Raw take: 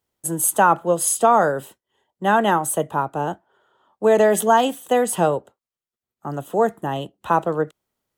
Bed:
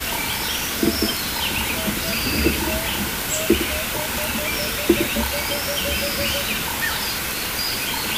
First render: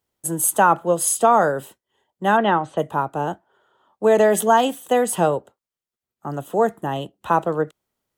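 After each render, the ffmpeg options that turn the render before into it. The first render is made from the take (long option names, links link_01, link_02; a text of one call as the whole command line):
ffmpeg -i in.wav -filter_complex "[0:a]asplit=3[link_01][link_02][link_03];[link_01]afade=type=out:start_time=2.36:duration=0.02[link_04];[link_02]lowpass=frequency=4100:width=0.5412,lowpass=frequency=4100:width=1.3066,afade=type=in:start_time=2.36:duration=0.02,afade=type=out:start_time=2.77:duration=0.02[link_05];[link_03]afade=type=in:start_time=2.77:duration=0.02[link_06];[link_04][link_05][link_06]amix=inputs=3:normalize=0" out.wav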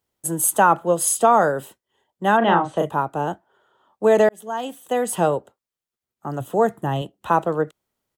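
ffmpeg -i in.wav -filter_complex "[0:a]asplit=3[link_01][link_02][link_03];[link_01]afade=type=out:start_time=2.41:duration=0.02[link_04];[link_02]asplit=2[link_05][link_06];[link_06]adelay=35,volume=-3.5dB[link_07];[link_05][link_07]amix=inputs=2:normalize=0,afade=type=in:start_time=2.41:duration=0.02,afade=type=out:start_time=2.89:duration=0.02[link_08];[link_03]afade=type=in:start_time=2.89:duration=0.02[link_09];[link_04][link_08][link_09]amix=inputs=3:normalize=0,asettb=1/sr,asplit=3[link_10][link_11][link_12];[link_10]atrim=end=6.404[link_13];[link_11]atrim=start=6.4:end=7.02,asetpts=PTS-STARTPTS,afade=type=in:duration=0.004:curve=qsin,afade=type=out:start_time=0.616:duration=0.004:curve=qsin,equalizer=frequency=120:width=2.4:gain=9.5[link_14];[link_12]atrim=start=7.016[link_15];[link_13][link_14]acrossfade=duration=0.004:curve1=hsin:curve2=qsin[link_16];[link_16][link_15]acrossfade=duration=0.004:curve1=qsin:curve2=hsin,asplit=2[link_17][link_18];[link_17]atrim=end=4.29,asetpts=PTS-STARTPTS,afade=type=out:start_time=4.286:duration=0.004:curve=hsin[link_19];[link_18]atrim=start=4.29,asetpts=PTS-STARTPTS,afade=type=in:duration=1.04[link_20];[link_19][link_20]concat=n=2:v=0:a=1" out.wav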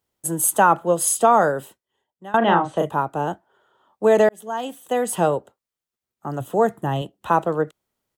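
ffmpeg -i in.wav -filter_complex "[0:a]asplit=2[link_01][link_02];[link_01]atrim=end=2.34,asetpts=PTS-STARTPTS,afade=type=out:start_time=1.5:duration=0.84:silence=0.0707946[link_03];[link_02]atrim=start=2.34,asetpts=PTS-STARTPTS,afade=type=in:duration=0.004:curve=hsin:silence=0.0707946[link_04];[link_03][link_04]concat=n=2:v=0:a=1" out.wav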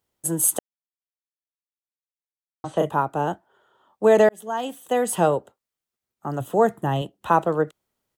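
ffmpeg -i in.wav -filter_complex "[0:a]asplit=3[link_01][link_02][link_03];[link_01]atrim=end=0.59,asetpts=PTS-STARTPTS,afade=type=out:start_time=0.586:duration=0.004:curve=hsin[link_04];[link_02]atrim=start=0.59:end=2.64,asetpts=PTS-STARTPTS,volume=0[link_05];[link_03]atrim=start=2.64,asetpts=PTS-STARTPTS,afade=type=in:duration=0.004:curve=hsin[link_06];[link_04][link_05][link_06]concat=n=3:v=0:a=1" out.wav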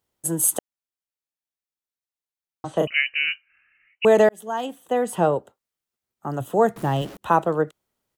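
ffmpeg -i in.wav -filter_complex "[0:a]asettb=1/sr,asplit=3[link_01][link_02][link_03];[link_01]atrim=end=2.874[link_04];[link_02]atrim=start=2.87:end=4.05,asetpts=PTS-STARTPTS,afade=type=in:duration=0.004:curve=qsin,afade=type=out:start_time=1.176:duration=0.004:curve=qsin,lowpass=frequency=2600:width_type=q:width=0.5098,lowpass=frequency=2600:width_type=q:width=0.6013,lowpass=frequency=2600:width_type=q:width=0.9,lowpass=frequency=2600:width_type=q:width=2.563,afreqshift=-3100[link_05];[link_03]atrim=start=4.046[link_06];[link_04][link_05]acrossfade=duration=0.004:curve1=hsin:curve2=qsin[link_07];[link_07][link_06]acrossfade=duration=0.004:curve1=qsin:curve2=hsin,asettb=1/sr,asplit=3[link_08][link_09][link_10];[link_08]atrim=end=4.664[link_11];[link_09]atrim=start=4.66:end=5.36,asetpts=PTS-STARTPTS,afade=type=in:duration=0.004:curve=qsin,afade=type=out:start_time=0.696:duration=0.004:curve=qsin,highshelf=frequency=2900:gain=-8.5[link_12];[link_10]atrim=start=5.356[link_13];[link_11][link_12]acrossfade=duration=0.004:curve1=hsin:curve2=qsin[link_14];[link_14][link_13]acrossfade=duration=0.004:curve1=qsin:curve2=hsin,asettb=1/sr,asplit=3[link_15][link_16][link_17];[link_15]atrim=end=6.764[link_18];[link_16]atrim=start=6.76:end=7.17,asetpts=PTS-STARTPTS,afade=type=in:duration=0.004:curve=qsin,afade=type=out:start_time=0.406:duration=0.004:curve=qsin,aeval=exprs='val(0)+0.5*0.0178*sgn(val(0))':channel_layout=same[link_19];[link_17]atrim=start=7.166[link_20];[link_18][link_19]acrossfade=duration=0.004:curve1=hsin:curve2=qsin[link_21];[link_21][link_20]acrossfade=duration=0.004:curve1=qsin:curve2=hsin" out.wav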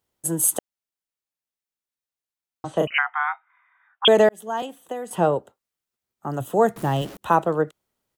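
ffmpeg -i in.wav -filter_complex "[0:a]asettb=1/sr,asplit=3[link_01][link_02][link_03];[link_01]atrim=end=2.984[link_04];[link_02]atrim=start=2.98:end=4.08,asetpts=PTS-STARTPTS,afade=type=in:duration=0.004:curve=qsin,afade=type=out:start_time=1.096:duration=0.004:curve=qsin,lowpass=frequency=3100:width_type=q:width=0.5098,lowpass=frequency=3100:width_type=q:width=0.6013,lowpass=frequency=3100:width_type=q:width=0.9,lowpass=frequency=3100:width_type=q:width=2.563,afreqshift=-3700[link_05];[link_03]atrim=start=4.076[link_06];[link_04][link_05]acrossfade=duration=0.004:curve1=hsin:curve2=qsin[link_07];[link_07][link_06]acrossfade=duration=0.004:curve1=qsin:curve2=hsin,asettb=1/sr,asplit=3[link_08][link_09][link_10];[link_08]atrim=end=4.624[link_11];[link_09]atrim=start=4.62:end=5.11,asetpts=PTS-STARTPTS,afade=type=in:duration=0.004:curve=qsin,afade=type=out:start_time=0.486:duration=0.004:curve=qsin,acrossover=split=410|5900[link_12][link_13][link_14];[link_12]acompressor=threshold=-39dB:ratio=4[link_15];[link_13]acompressor=threshold=-32dB:ratio=4[link_16];[link_14]acompressor=threshold=-50dB:ratio=4[link_17];[link_15][link_16][link_17]amix=inputs=3:normalize=0[link_18];[link_10]atrim=start=5.106[link_19];[link_11][link_18]acrossfade=duration=0.004:curve1=hsin:curve2=qsin[link_20];[link_20][link_19]acrossfade=duration=0.004:curve1=qsin:curve2=hsin,asettb=1/sr,asplit=3[link_21][link_22][link_23];[link_21]atrim=end=6.334[link_24];[link_22]atrim=start=6.33:end=7.35,asetpts=PTS-STARTPTS,afade=type=in:duration=0.004:curve=qsin,afade=type=out:start_time=1.016:duration=0.004:curve=qsin,highshelf=frequency=5200:gain=3.5[link_25];[link_23]atrim=start=7.346[link_26];[link_24][link_25]acrossfade=duration=0.004:curve1=hsin:curve2=qsin[link_27];[link_27][link_26]acrossfade=duration=0.004:curve1=qsin:curve2=hsin" out.wav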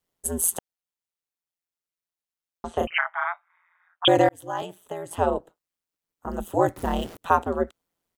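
ffmpeg -i in.wav -af "aeval=exprs='val(0)*sin(2*PI*86*n/s)':channel_layout=same" out.wav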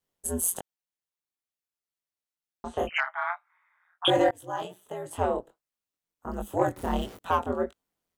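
ffmpeg -i in.wav -af "asoftclip=type=tanh:threshold=-8dB,flanger=delay=19.5:depth=4.6:speed=1.4" out.wav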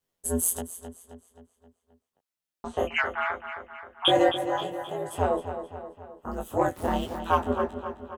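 ffmpeg -i in.wav -filter_complex "[0:a]asplit=2[link_01][link_02];[link_02]adelay=12,volume=-4.5dB[link_03];[link_01][link_03]amix=inputs=2:normalize=0,asplit=2[link_04][link_05];[link_05]adelay=264,lowpass=frequency=5000:poles=1,volume=-9.5dB,asplit=2[link_06][link_07];[link_07]adelay=264,lowpass=frequency=5000:poles=1,volume=0.55,asplit=2[link_08][link_09];[link_09]adelay=264,lowpass=frequency=5000:poles=1,volume=0.55,asplit=2[link_10][link_11];[link_11]adelay=264,lowpass=frequency=5000:poles=1,volume=0.55,asplit=2[link_12][link_13];[link_13]adelay=264,lowpass=frequency=5000:poles=1,volume=0.55,asplit=2[link_14][link_15];[link_15]adelay=264,lowpass=frequency=5000:poles=1,volume=0.55[link_16];[link_04][link_06][link_08][link_10][link_12][link_14][link_16]amix=inputs=7:normalize=0" out.wav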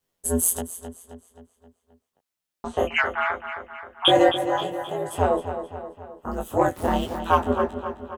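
ffmpeg -i in.wav -af "volume=4dB" out.wav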